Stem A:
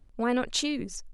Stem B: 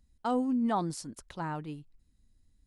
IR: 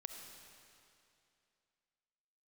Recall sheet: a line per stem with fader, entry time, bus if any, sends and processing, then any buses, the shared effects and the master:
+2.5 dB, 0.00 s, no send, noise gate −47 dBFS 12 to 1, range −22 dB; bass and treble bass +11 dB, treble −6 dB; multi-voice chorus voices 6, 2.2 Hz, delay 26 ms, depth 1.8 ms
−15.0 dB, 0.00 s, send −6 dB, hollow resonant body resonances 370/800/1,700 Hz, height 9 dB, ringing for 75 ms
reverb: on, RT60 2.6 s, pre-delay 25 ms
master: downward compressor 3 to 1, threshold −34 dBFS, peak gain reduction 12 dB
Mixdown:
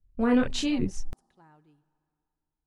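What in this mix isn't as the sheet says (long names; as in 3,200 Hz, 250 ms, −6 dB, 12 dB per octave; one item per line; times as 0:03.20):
stem B −15.0 dB → −25.0 dB
master: missing downward compressor 3 to 1, threshold −34 dBFS, peak gain reduction 12 dB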